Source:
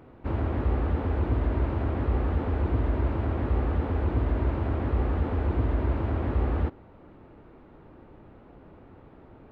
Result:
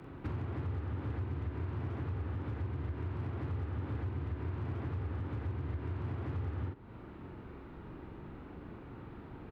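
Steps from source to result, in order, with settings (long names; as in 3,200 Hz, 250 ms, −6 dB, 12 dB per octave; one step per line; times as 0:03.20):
frequency shifter +23 Hz
double-tracking delay 44 ms −4 dB
downward compressor 12 to 1, threshold −36 dBFS, peak gain reduction 18 dB
hard clipping −33.5 dBFS, distortion −21 dB
parametric band 590 Hz −8.5 dB 1 octave
level +3 dB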